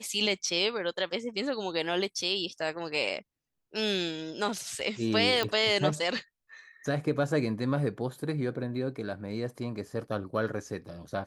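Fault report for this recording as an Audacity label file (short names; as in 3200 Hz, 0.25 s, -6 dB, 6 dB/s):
5.430000	5.430000	pop -14 dBFS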